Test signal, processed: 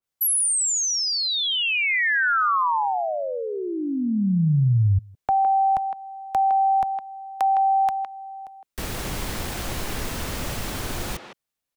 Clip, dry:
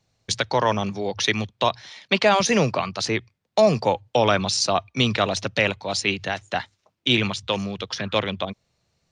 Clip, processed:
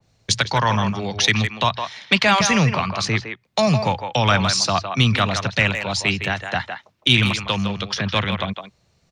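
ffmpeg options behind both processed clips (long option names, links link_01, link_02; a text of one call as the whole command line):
ffmpeg -i in.wav -filter_complex "[0:a]lowshelf=frequency=320:gain=3.5,acrossover=split=210|860|1600[link_01][link_02][link_03][link_04];[link_02]acompressor=threshold=-39dB:ratio=6[link_05];[link_01][link_05][link_03][link_04]amix=inputs=4:normalize=0,asplit=2[link_06][link_07];[link_07]adelay=160,highpass=300,lowpass=3400,asoftclip=type=hard:threshold=-13dB,volume=-7dB[link_08];[link_06][link_08]amix=inputs=2:normalize=0,acontrast=25,adynamicequalizer=threshold=0.0224:dfrequency=2500:dqfactor=0.7:tfrequency=2500:tqfactor=0.7:attack=5:release=100:ratio=0.375:range=2.5:mode=cutabove:tftype=highshelf,volume=1dB" out.wav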